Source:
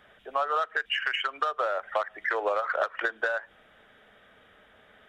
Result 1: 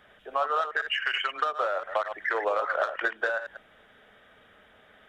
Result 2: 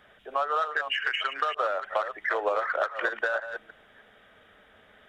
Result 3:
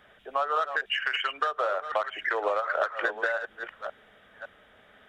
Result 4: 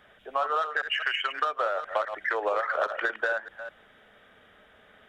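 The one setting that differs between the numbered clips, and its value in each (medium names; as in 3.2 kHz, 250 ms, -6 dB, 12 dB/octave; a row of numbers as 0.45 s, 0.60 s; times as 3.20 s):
chunks repeated in reverse, time: 102 ms, 309 ms, 557 ms, 205 ms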